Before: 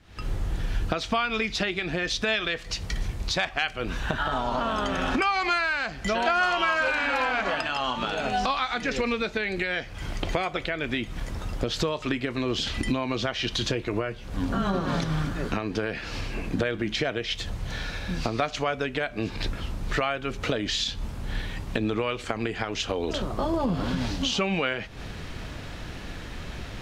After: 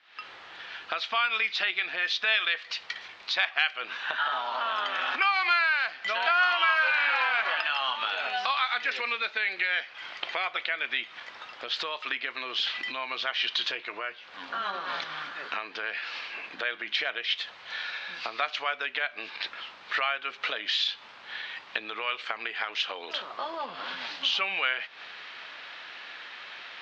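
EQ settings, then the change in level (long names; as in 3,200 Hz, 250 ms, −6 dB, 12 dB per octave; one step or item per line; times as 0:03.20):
high-pass filter 1,200 Hz 12 dB per octave
low-pass filter 4,100 Hz 24 dB per octave
+3.0 dB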